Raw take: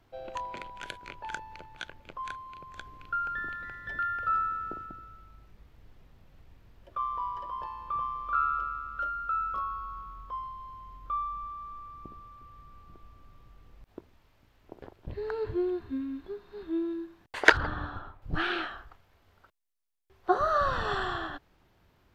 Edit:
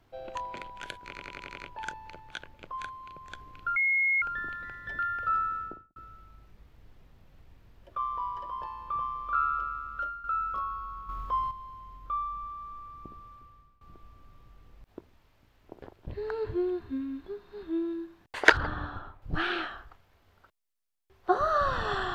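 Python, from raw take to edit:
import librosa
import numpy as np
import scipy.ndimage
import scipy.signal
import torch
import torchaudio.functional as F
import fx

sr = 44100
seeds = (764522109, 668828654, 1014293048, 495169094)

y = fx.studio_fade_out(x, sr, start_s=4.58, length_s=0.38)
y = fx.edit(y, sr, fx.stutter(start_s=1.04, slice_s=0.09, count=7),
    fx.insert_tone(at_s=3.22, length_s=0.46, hz=2160.0, db=-22.5),
    fx.fade_out_to(start_s=8.99, length_s=0.25, floor_db=-10.0),
    fx.clip_gain(start_s=10.09, length_s=0.42, db=8.0),
    fx.fade_out_to(start_s=12.33, length_s=0.48, floor_db=-21.0), tone=tone)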